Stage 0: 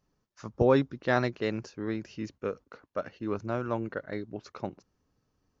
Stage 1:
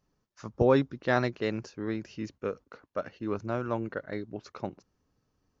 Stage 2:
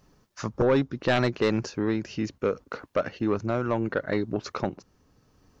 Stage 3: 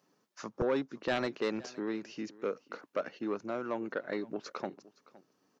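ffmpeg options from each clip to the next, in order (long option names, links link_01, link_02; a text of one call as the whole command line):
ffmpeg -i in.wav -af anull out.wav
ffmpeg -i in.wav -af "acompressor=threshold=-43dB:ratio=1.5,tremolo=f=0.7:d=0.32,aeval=exprs='0.106*sin(PI/2*2.24*val(0)/0.106)':channel_layout=same,volume=4dB" out.wav
ffmpeg -i in.wav -filter_complex "[0:a]aecho=1:1:515:0.0944,acrossover=split=180|2200[link_01][link_02][link_03];[link_01]acrusher=bits=3:mix=0:aa=0.5[link_04];[link_04][link_02][link_03]amix=inputs=3:normalize=0,volume=-8dB" out.wav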